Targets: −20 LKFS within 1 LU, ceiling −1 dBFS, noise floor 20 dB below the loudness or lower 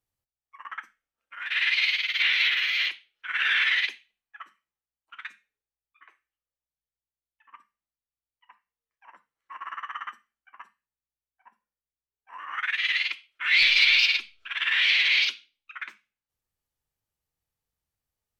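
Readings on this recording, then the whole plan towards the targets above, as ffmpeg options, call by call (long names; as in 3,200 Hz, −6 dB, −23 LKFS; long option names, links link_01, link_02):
integrated loudness −22.0 LKFS; sample peak −8.5 dBFS; target loudness −20.0 LKFS
→ -af "volume=2dB"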